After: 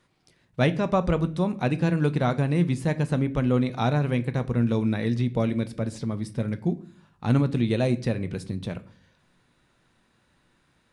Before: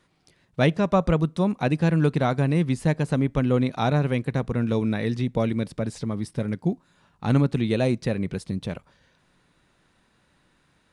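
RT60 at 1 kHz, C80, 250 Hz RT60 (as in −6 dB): 0.40 s, 22.0 dB, 0.70 s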